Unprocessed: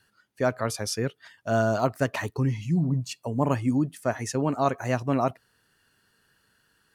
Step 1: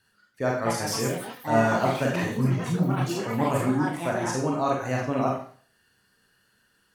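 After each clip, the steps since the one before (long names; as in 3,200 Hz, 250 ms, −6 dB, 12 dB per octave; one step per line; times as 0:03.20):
four-comb reverb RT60 0.47 s, combs from 31 ms, DRR −2 dB
delay with pitch and tempo change per echo 344 ms, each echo +5 semitones, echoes 3, each echo −6 dB
level −3.5 dB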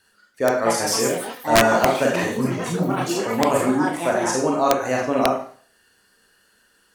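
graphic EQ with 10 bands 125 Hz −11 dB, 500 Hz +3 dB, 8,000 Hz +4 dB
wrap-around overflow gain 11 dB
level +5.5 dB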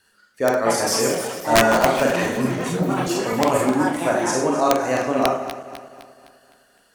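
feedback delay that plays each chunk backwards 128 ms, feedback 69%, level −11.5 dB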